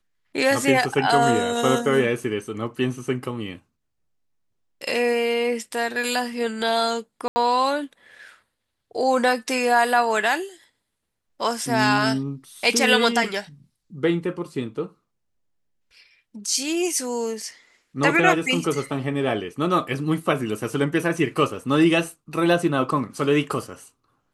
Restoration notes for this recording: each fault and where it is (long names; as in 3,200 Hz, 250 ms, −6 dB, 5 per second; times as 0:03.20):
0:07.28–0:07.36: drop-out 80 ms